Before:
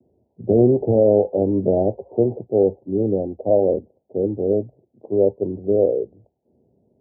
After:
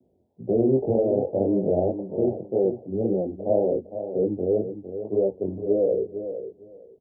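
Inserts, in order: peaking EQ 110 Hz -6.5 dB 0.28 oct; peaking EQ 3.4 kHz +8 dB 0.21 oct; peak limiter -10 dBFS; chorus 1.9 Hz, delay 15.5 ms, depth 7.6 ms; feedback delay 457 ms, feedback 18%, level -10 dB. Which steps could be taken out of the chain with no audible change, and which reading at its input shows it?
peaking EQ 3.4 kHz: input has nothing above 850 Hz

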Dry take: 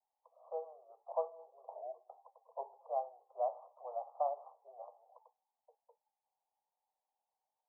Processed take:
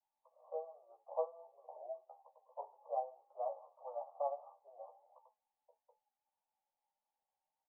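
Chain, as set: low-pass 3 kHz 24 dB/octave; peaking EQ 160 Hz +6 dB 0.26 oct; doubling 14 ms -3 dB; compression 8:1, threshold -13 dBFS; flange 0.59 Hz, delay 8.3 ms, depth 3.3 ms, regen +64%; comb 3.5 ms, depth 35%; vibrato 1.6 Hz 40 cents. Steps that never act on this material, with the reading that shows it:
low-pass 3 kHz: input has nothing above 1.2 kHz; peaking EQ 160 Hz: input has nothing below 380 Hz; compression, threshold -13 dBFS: peak at its input -19.0 dBFS

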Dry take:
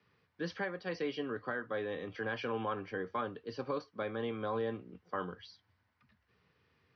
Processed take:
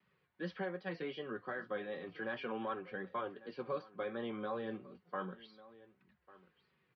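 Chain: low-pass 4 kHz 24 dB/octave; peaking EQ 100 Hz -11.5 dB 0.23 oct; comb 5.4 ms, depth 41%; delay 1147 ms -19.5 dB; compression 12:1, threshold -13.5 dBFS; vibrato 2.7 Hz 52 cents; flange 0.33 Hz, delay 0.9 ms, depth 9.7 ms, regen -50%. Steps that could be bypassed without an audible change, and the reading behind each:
compression, threshold -13.5 dBFS: peak at its input -23.5 dBFS

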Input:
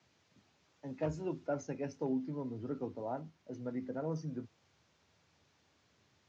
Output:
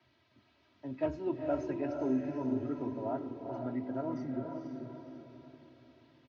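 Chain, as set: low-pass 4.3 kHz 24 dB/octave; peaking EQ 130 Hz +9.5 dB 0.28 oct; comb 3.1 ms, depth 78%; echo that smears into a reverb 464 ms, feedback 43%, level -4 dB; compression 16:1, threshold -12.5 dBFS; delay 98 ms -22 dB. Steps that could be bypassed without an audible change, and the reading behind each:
compression, threshold -12.5 dBFS: peak at its input -20.0 dBFS

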